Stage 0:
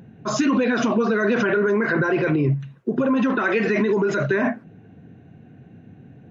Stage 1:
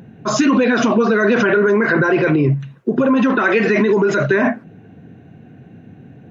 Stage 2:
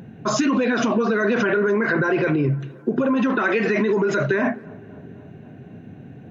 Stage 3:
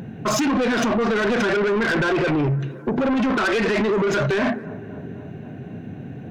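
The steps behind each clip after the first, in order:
bass shelf 120 Hz -4 dB; trim +6 dB
compression 2:1, threshold -21 dBFS, peak gain reduction 6.5 dB; tape echo 257 ms, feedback 81%, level -23 dB, low-pass 1.6 kHz
saturation -23.5 dBFS, distortion -9 dB; trim +6 dB

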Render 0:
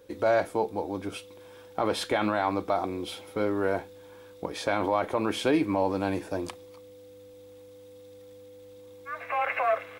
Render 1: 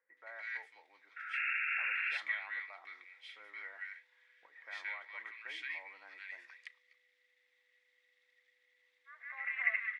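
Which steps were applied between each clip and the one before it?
ladder band-pass 2 kHz, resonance 90%; painted sound noise, 1.16–2.01 s, 1.3–2.8 kHz -34 dBFS; bands offset in time lows, highs 170 ms, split 1.4 kHz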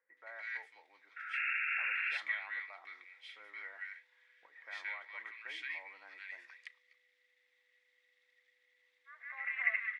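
no audible change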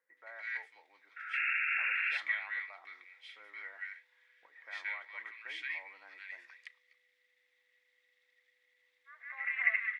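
dynamic bell 2.1 kHz, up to +3 dB, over -44 dBFS, Q 0.86

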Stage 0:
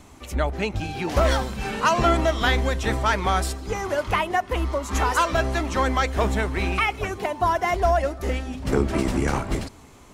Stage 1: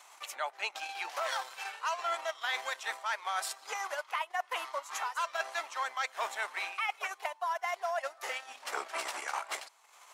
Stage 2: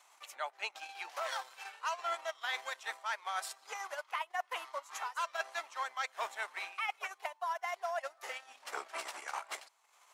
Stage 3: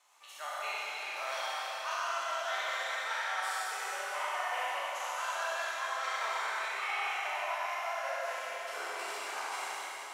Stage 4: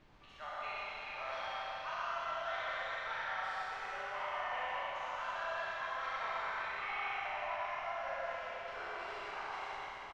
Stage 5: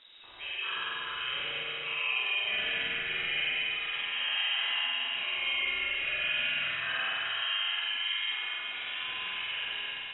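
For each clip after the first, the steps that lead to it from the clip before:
transient shaper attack +4 dB, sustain -10 dB; high-pass 760 Hz 24 dB/octave; reverse; compression 6:1, threshold -30 dBFS, peak gain reduction 15.5 dB; reverse; trim -1.5 dB
upward expansion 1.5:1, over -42 dBFS; trim -2 dB
spectral sustain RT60 1.19 s; Schroeder reverb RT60 3.9 s, combs from 31 ms, DRR -6.5 dB; trim -7.5 dB
added noise pink -59 dBFS; distance through air 240 m; on a send: delay 115 ms -6 dB; on the sum: trim -3.5 dB
frequency inversion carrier 3.8 kHz; flutter echo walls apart 8.2 m, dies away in 0.82 s; spectral gate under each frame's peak -30 dB strong; trim +5 dB

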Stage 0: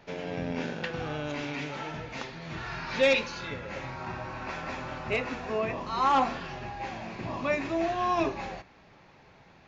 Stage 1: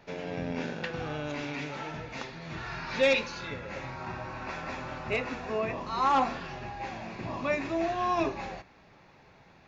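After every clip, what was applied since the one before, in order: band-stop 3.1 kHz, Q 21; trim -1 dB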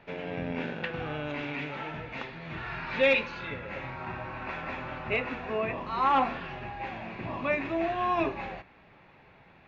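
resonant high shelf 4.1 kHz -12 dB, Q 1.5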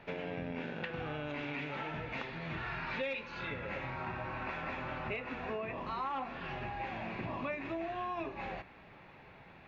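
compression 6:1, threshold -37 dBFS, peak gain reduction 16 dB; trim +1 dB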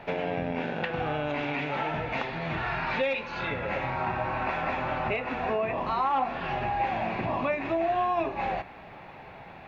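peaking EQ 740 Hz +7 dB 0.71 oct; trim +7.5 dB

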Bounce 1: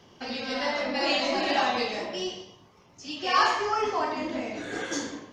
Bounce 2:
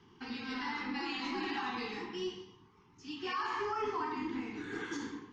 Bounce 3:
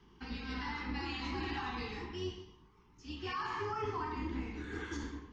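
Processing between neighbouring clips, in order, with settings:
Chebyshev band-stop 400–910 Hz, order 2; peak limiter -22 dBFS, peak gain reduction 10.5 dB; low-pass 2.2 kHz 6 dB/octave; trim -4 dB
octave divider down 2 oct, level +1 dB; trim -2.5 dB

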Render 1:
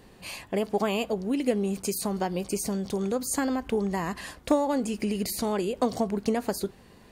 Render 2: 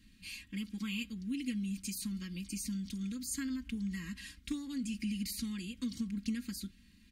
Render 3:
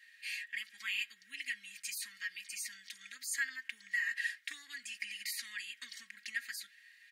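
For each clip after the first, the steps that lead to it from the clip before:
Chebyshev band-stop 180–2500 Hz, order 2; treble shelf 7 kHz -5.5 dB; comb 3.7 ms, depth 91%; trim -7 dB
resonant high-pass 1.8 kHz, resonance Q 9.7

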